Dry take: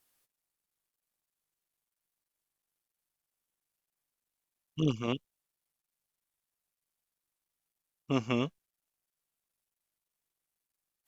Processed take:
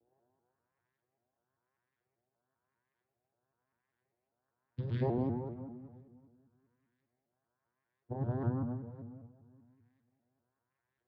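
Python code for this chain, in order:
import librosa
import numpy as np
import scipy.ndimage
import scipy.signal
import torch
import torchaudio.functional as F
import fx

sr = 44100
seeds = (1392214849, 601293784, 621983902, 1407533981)

y = fx.over_compress(x, sr, threshold_db=-38.0, ratio=-1.0)
y = fx.filter_lfo_lowpass(y, sr, shape='saw_up', hz=1.0, low_hz=470.0, high_hz=2500.0, q=4.6)
y = fx.vocoder(y, sr, bands=8, carrier='saw', carrier_hz=126.0)
y = fx.echo_tape(y, sr, ms=265, feedback_pct=38, wet_db=-8, lp_hz=2000.0, drive_db=30.0, wow_cents=26)
y = fx.rev_fdn(y, sr, rt60_s=1.3, lf_ratio=1.55, hf_ratio=0.5, size_ms=90.0, drr_db=-0.5)
y = fx.vibrato_shape(y, sr, shape='saw_up', rate_hz=5.1, depth_cents=160.0)
y = y * 10.0 ** (2.0 / 20.0)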